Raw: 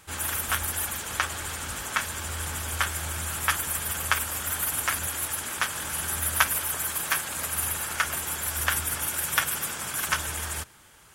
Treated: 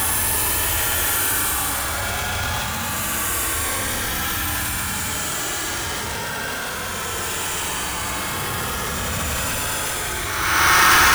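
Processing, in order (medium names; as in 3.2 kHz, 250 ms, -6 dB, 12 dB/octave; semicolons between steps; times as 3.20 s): square wave that keeps the level; Paulstretch 27×, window 0.05 s, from 0.80 s; transient shaper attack -6 dB, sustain +10 dB; trim +5 dB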